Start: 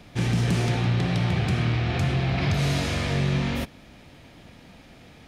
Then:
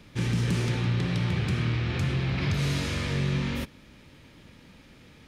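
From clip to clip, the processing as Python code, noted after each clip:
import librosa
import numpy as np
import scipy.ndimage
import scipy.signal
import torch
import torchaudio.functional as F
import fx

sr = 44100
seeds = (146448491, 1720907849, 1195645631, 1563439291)

y = fx.peak_eq(x, sr, hz=710.0, db=-12.5, octaves=0.29)
y = y * 10.0 ** (-3.0 / 20.0)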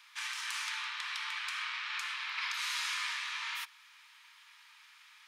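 y = scipy.signal.sosfilt(scipy.signal.butter(12, 930.0, 'highpass', fs=sr, output='sos'), x)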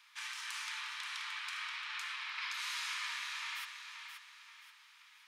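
y = fx.echo_feedback(x, sr, ms=529, feedback_pct=38, wet_db=-7.5)
y = y * 10.0 ** (-4.5 / 20.0)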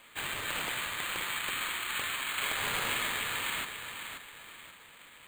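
y = np.repeat(x[::8], 8)[:len(x)]
y = y * 10.0 ** (7.5 / 20.0)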